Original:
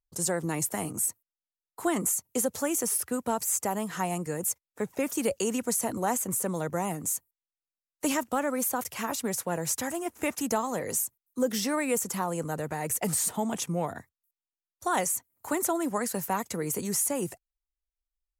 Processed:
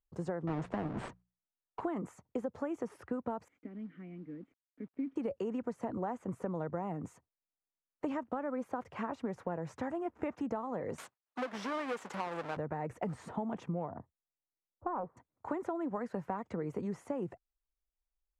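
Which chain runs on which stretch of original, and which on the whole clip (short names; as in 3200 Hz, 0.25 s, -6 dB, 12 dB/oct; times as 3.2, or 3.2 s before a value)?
0.47–1.81 half-waves squared off + LPF 9100 Hz 24 dB/oct + notches 60/120/180 Hz
3.48–5.16 vowel filter i + tone controls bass +4 dB, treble -12 dB + companded quantiser 6-bit
10.98–12.57 half-waves squared off + HPF 960 Hz 6 dB/oct + high shelf 4600 Hz +11 dB
13.89–15.17 LPF 1100 Hz 24 dB/oct + Doppler distortion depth 0.27 ms
whole clip: LPF 1300 Hz 12 dB/oct; compressor, threshold -33 dBFS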